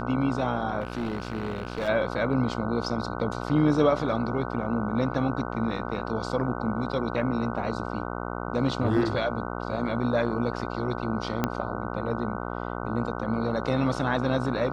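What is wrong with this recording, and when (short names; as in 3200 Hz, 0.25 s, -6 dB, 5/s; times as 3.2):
buzz 60 Hz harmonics 25 -33 dBFS
0.8–1.89 clipped -25.5 dBFS
11.44 pop -10 dBFS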